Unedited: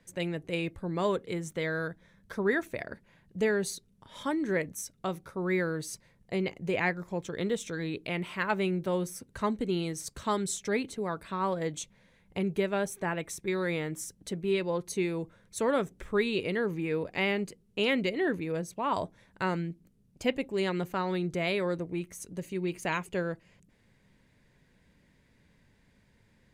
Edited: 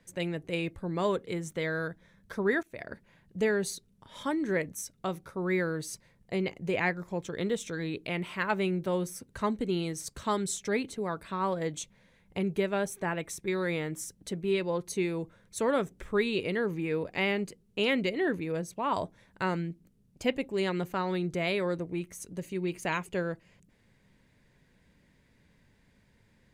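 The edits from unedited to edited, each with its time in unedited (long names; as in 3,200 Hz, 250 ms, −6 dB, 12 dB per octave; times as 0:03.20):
0:02.63–0:02.92: fade in, from −23.5 dB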